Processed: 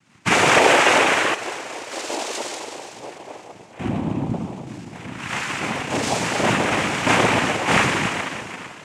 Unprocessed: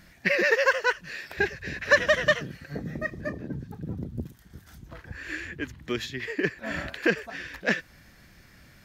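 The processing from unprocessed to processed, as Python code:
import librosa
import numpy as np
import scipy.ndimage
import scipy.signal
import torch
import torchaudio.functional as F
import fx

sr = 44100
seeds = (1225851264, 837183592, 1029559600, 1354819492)

y = fx.doubler(x, sr, ms=35.0, db=-5)
y = fx.rev_plate(y, sr, seeds[0], rt60_s=2.6, hf_ratio=0.9, predelay_ms=0, drr_db=-6.5)
y = fx.leveller(y, sr, passes=2)
y = fx.double_bandpass(y, sr, hz=1500.0, octaves=1.8, at=(1.34, 3.79))
y = fx.echo_feedback(y, sr, ms=253, feedback_pct=58, wet_db=-17.5)
y = fx.noise_vocoder(y, sr, seeds[1], bands=4)
y = y * librosa.db_to_amplitude(-4.5)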